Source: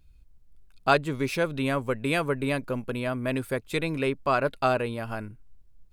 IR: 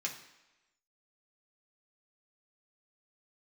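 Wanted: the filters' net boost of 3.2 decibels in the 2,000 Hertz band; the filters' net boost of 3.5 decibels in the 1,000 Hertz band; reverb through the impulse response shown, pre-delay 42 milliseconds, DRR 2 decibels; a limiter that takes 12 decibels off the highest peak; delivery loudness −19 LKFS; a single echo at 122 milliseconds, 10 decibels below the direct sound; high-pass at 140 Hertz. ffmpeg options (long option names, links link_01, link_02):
-filter_complex "[0:a]highpass=140,equalizer=frequency=1000:width_type=o:gain=4,equalizer=frequency=2000:width_type=o:gain=3,alimiter=limit=-14.5dB:level=0:latency=1,aecho=1:1:122:0.316,asplit=2[link_01][link_02];[1:a]atrim=start_sample=2205,adelay=42[link_03];[link_02][link_03]afir=irnorm=-1:irlink=0,volume=-4dB[link_04];[link_01][link_04]amix=inputs=2:normalize=0,volume=7.5dB"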